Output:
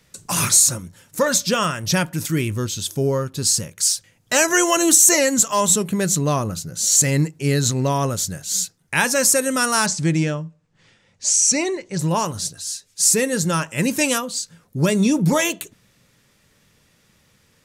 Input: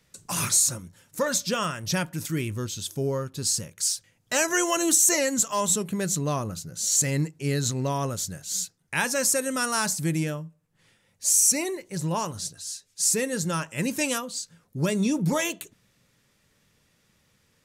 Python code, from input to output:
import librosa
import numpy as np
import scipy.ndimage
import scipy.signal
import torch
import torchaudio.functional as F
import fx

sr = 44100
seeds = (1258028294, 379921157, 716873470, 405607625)

y = fx.lowpass(x, sr, hz=7200.0, slope=24, at=(9.86, 11.99))
y = F.gain(torch.from_numpy(y), 7.0).numpy()